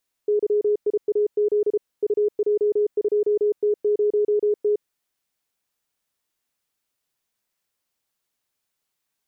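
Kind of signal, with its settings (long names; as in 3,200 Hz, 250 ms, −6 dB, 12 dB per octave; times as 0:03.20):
Morse code "YIAZ UJ2T0T" 33 words per minute 417 Hz −16.5 dBFS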